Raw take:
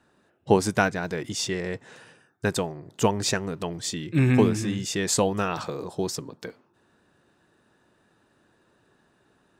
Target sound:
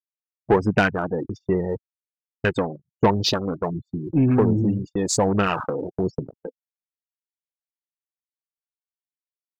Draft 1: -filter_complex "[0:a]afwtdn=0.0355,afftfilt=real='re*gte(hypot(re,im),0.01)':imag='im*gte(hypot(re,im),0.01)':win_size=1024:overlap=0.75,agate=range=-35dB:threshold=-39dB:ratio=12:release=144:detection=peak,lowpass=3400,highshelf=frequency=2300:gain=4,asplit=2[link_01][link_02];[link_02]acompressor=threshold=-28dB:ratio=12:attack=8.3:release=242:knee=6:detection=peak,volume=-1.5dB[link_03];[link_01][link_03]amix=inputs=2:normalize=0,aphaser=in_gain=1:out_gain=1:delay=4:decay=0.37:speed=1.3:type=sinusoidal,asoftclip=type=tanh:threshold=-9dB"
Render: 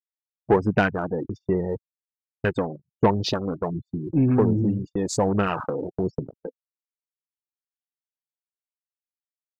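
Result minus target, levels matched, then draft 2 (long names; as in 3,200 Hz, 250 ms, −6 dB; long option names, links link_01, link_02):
downward compressor: peak gain reduction +7 dB; 4,000 Hz band −4.5 dB
-filter_complex "[0:a]afwtdn=0.0355,afftfilt=real='re*gte(hypot(re,im),0.01)':imag='im*gte(hypot(re,im),0.01)':win_size=1024:overlap=0.75,agate=range=-35dB:threshold=-39dB:ratio=12:release=144:detection=peak,lowpass=3400,highshelf=frequency=2300:gain=12,asplit=2[link_01][link_02];[link_02]acompressor=threshold=-20dB:ratio=12:attack=8.3:release=242:knee=6:detection=peak,volume=-1.5dB[link_03];[link_01][link_03]amix=inputs=2:normalize=0,aphaser=in_gain=1:out_gain=1:delay=4:decay=0.37:speed=1.3:type=sinusoidal,asoftclip=type=tanh:threshold=-9dB"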